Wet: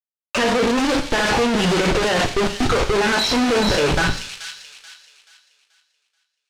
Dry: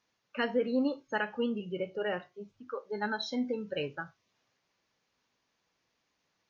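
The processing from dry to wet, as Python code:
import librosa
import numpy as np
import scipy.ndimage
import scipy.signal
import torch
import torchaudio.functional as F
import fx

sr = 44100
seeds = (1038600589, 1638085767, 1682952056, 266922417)

y = fx.fuzz(x, sr, gain_db=56.0, gate_db=-52.0)
y = fx.bass_treble(y, sr, bass_db=-5, treble_db=10)
y = fx.notch(y, sr, hz=680.0, q=12.0)
y = fx.schmitt(y, sr, flips_db=-32.0)
y = fx.air_absorb(y, sr, metres=83.0)
y = fx.echo_wet_highpass(y, sr, ms=432, feedback_pct=35, hz=3200.0, wet_db=-3.5)
y = fx.rev_double_slope(y, sr, seeds[0], early_s=0.49, late_s=1.6, knee_db=-28, drr_db=6.0)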